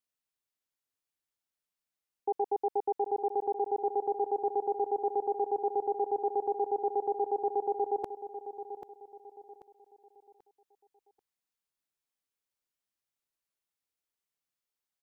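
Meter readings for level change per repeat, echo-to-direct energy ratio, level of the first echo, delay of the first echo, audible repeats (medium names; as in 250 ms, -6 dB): -9.0 dB, -10.5 dB, -11.0 dB, 787 ms, 3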